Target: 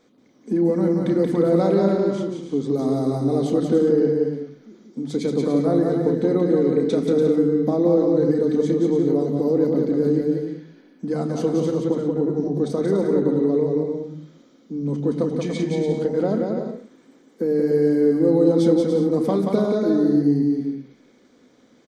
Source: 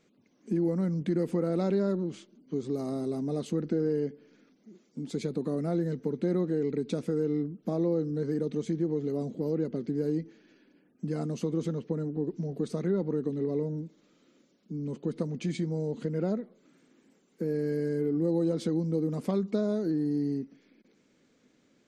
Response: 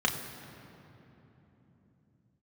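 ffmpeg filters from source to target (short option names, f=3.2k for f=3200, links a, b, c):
-filter_complex "[0:a]aecho=1:1:180|288|352.8|391.7|415:0.631|0.398|0.251|0.158|0.1,asplit=2[a][b];[1:a]atrim=start_sample=2205,afade=t=out:st=0.17:d=0.01,atrim=end_sample=7938[c];[b][c]afir=irnorm=-1:irlink=0,volume=-12.5dB[d];[a][d]amix=inputs=2:normalize=0,volume=6.5dB"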